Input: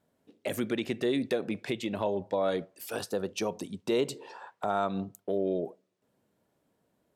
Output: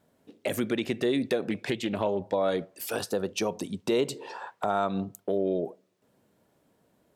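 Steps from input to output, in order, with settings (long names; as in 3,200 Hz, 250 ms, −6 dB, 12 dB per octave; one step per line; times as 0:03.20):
in parallel at +1 dB: downward compressor, threshold −38 dBFS, peak gain reduction 14 dB
0:01.50–0:02.19: on the sum: highs frequency-modulated by the lows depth 0.16 ms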